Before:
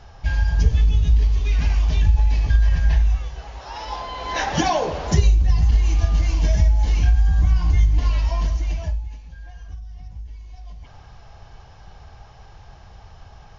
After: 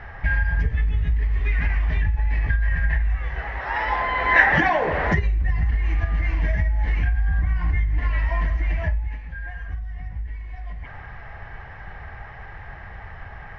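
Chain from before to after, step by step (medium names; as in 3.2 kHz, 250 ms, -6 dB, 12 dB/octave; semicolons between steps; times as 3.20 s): compression 6:1, threshold -23 dBFS, peak gain reduction 13 dB; resonant low-pass 1.9 kHz, resonance Q 7.4; trim +4.5 dB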